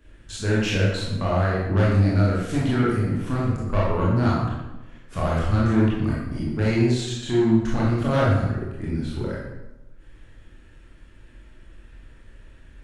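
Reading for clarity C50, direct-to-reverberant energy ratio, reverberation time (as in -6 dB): -0.5 dB, -7.0 dB, 1.0 s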